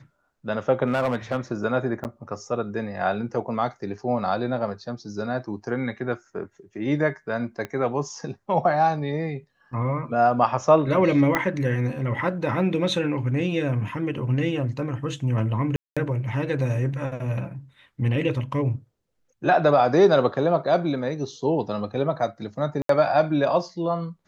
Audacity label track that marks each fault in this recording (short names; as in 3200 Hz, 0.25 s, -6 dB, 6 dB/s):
0.860000	1.370000	clipped -18.5 dBFS
2.040000	2.050000	gap 9.3 ms
7.650000	7.650000	pop -18 dBFS
11.350000	11.350000	pop -8 dBFS
15.760000	15.970000	gap 0.206 s
22.820000	22.890000	gap 73 ms